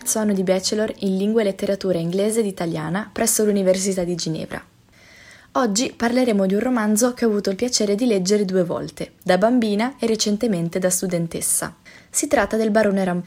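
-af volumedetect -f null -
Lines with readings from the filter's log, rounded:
mean_volume: -20.5 dB
max_volume: -2.9 dB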